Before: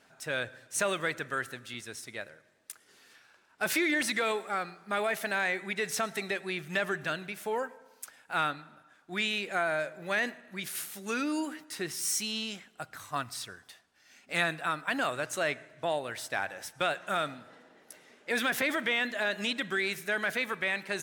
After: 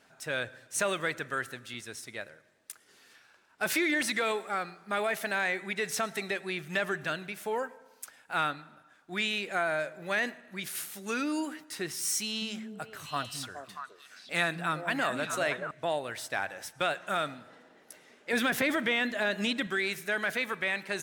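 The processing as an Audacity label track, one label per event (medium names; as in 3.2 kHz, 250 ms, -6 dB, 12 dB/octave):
12.190000	15.710000	repeats whose band climbs or falls 211 ms, band-pass from 190 Hz, each repeat 1.4 oct, level 0 dB
18.330000	19.670000	bass shelf 330 Hz +7.5 dB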